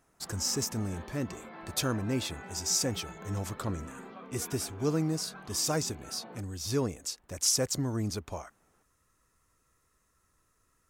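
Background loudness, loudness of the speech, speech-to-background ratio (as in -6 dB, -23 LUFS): -47.5 LUFS, -32.5 LUFS, 15.0 dB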